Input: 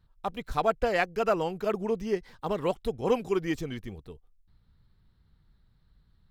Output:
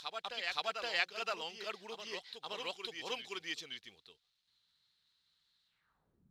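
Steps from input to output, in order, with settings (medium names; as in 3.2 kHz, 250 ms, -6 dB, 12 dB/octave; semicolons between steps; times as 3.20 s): reverse echo 520 ms -5.5 dB; companded quantiser 8-bit; band-pass sweep 3.9 kHz -> 230 Hz, 5.66–6.27 s; trim +7 dB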